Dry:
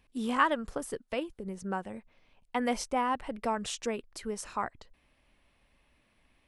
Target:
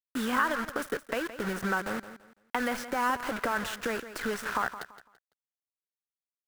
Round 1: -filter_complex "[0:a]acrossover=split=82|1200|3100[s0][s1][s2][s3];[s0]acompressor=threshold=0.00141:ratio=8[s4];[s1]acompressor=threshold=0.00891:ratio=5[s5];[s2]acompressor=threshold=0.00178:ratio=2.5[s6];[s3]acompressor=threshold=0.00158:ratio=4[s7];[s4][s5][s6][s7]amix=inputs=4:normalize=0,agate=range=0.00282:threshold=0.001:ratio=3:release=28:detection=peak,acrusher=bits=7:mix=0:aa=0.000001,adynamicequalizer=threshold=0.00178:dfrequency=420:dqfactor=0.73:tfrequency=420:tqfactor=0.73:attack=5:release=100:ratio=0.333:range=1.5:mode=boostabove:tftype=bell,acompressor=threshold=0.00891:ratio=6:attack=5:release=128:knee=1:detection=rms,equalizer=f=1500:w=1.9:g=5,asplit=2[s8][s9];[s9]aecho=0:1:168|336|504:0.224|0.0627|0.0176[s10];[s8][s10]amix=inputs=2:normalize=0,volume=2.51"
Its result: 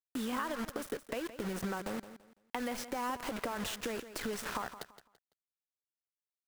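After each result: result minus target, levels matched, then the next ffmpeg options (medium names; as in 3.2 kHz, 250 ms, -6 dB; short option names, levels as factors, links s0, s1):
compression: peak gain reduction +5.5 dB; 2 kHz band -4.5 dB
-filter_complex "[0:a]acrossover=split=82|1200|3100[s0][s1][s2][s3];[s0]acompressor=threshold=0.00141:ratio=8[s4];[s1]acompressor=threshold=0.00891:ratio=5[s5];[s2]acompressor=threshold=0.00178:ratio=2.5[s6];[s3]acompressor=threshold=0.00158:ratio=4[s7];[s4][s5][s6][s7]amix=inputs=4:normalize=0,agate=range=0.00282:threshold=0.001:ratio=3:release=28:detection=peak,acrusher=bits=7:mix=0:aa=0.000001,adynamicequalizer=threshold=0.00178:dfrequency=420:dqfactor=0.73:tfrequency=420:tqfactor=0.73:attack=5:release=100:ratio=0.333:range=1.5:mode=boostabove:tftype=bell,acompressor=threshold=0.0188:ratio=6:attack=5:release=128:knee=1:detection=rms,equalizer=f=1500:w=1.9:g=5,asplit=2[s8][s9];[s9]aecho=0:1:168|336|504:0.224|0.0627|0.0176[s10];[s8][s10]amix=inputs=2:normalize=0,volume=2.51"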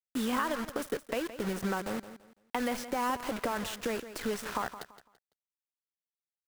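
2 kHz band -4.5 dB
-filter_complex "[0:a]acrossover=split=82|1200|3100[s0][s1][s2][s3];[s0]acompressor=threshold=0.00141:ratio=8[s4];[s1]acompressor=threshold=0.00891:ratio=5[s5];[s2]acompressor=threshold=0.00178:ratio=2.5[s6];[s3]acompressor=threshold=0.00158:ratio=4[s7];[s4][s5][s6][s7]amix=inputs=4:normalize=0,agate=range=0.00282:threshold=0.001:ratio=3:release=28:detection=peak,acrusher=bits=7:mix=0:aa=0.000001,adynamicequalizer=threshold=0.00178:dfrequency=420:dqfactor=0.73:tfrequency=420:tqfactor=0.73:attack=5:release=100:ratio=0.333:range=1.5:mode=boostabove:tftype=bell,acompressor=threshold=0.0188:ratio=6:attack=5:release=128:knee=1:detection=rms,equalizer=f=1500:w=1.9:g=14.5,asplit=2[s8][s9];[s9]aecho=0:1:168|336|504:0.224|0.0627|0.0176[s10];[s8][s10]amix=inputs=2:normalize=0,volume=2.51"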